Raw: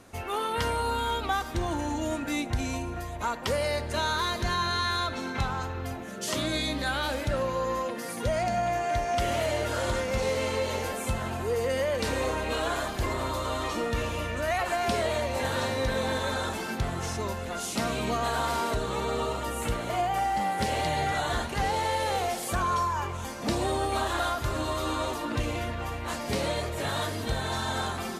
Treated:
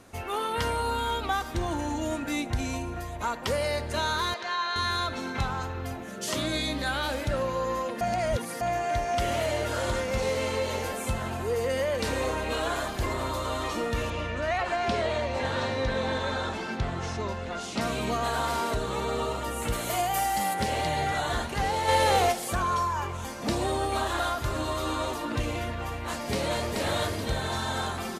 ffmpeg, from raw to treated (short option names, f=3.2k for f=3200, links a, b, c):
-filter_complex "[0:a]asettb=1/sr,asplit=3[a][b][c];[a]atrim=end=4.344[d];[b]atrim=start=4.34:end=4.76,asetpts=PTS-STARTPTS,afade=t=in:d=0.004:c=qsin,afade=t=out:st=0.416:d=0.004:c=qsin,highpass=590,lowpass=4.4k[e];[c]atrim=start=4.756[f];[d][e]acrossfade=d=0.004:c1=hsin:c2=qsin[g];[g][f]acrossfade=d=0.004:c1=qsin:c2=hsin,asettb=1/sr,asplit=3[h][i][j];[h]atrim=end=14.104[k];[i]atrim=start=14.1:end=17.81,asetpts=PTS-STARTPTS,afade=t=in:d=0.004:c=qsin,afade=t=out:st=3.706:d=0.004:c=qsin,lowpass=5.2k[l];[j]atrim=start=17.806[m];[k][l]acrossfade=d=0.004:c1=hsin:c2=qsin[n];[n][m]acrossfade=d=0.004:c1=qsin:c2=hsin,asplit=3[o][p][q];[o]afade=t=out:st=19.72:d=0.02[r];[p]aemphasis=mode=production:type=75fm,afade=t=in:st=19.72:d=0.02,afade=t=out:st=20.53:d=0.02[s];[q]afade=t=in:st=20.53:d=0.02[t];[r][s][t]amix=inputs=3:normalize=0,asplit=3[u][v][w];[u]afade=t=out:st=21.87:d=0.02[x];[v]acontrast=54,afade=t=in:st=21.87:d=0.02,afade=t=out:st=22.31:d=0.02[y];[w]afade=t=in:st=22.31:d=0.02[z];[x][y][z]amix=inputs=3:normalize=0,asplit=2[aa][ab];[ab]afade=t=in:st=26.07:d=0.01,afade=t=out:st=26.72:d=0.01,aecho=0:1:430|860|1290|1720|2150:0.749894|0.262463|0.091862|0.0321517|0.0112531[ac];[aa][ac]amix=inputs=2:normalize=0,asplit=3[ad][ae][af];[ad]atrim=end=8.012[ag];[ae]atrim=start=8.008:end=8.612,asetpts=PTS-STARTPTS,areverse[ah];[af]atrim=start=8.608[ai];[ag][ah]acrossfade=d=0.004:c1=hsin:c2=hsin[aj];[aj][ai]acrossfade=d=0.004:c1=hsin:c2=hsin"